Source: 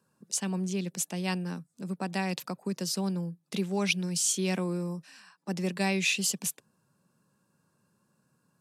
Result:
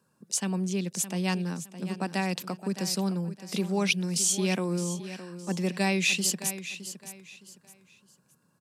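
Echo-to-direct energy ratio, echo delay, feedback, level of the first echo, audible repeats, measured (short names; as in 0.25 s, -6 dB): -12.0 dB, 0.614 s, 28%, -12.5 dB, 3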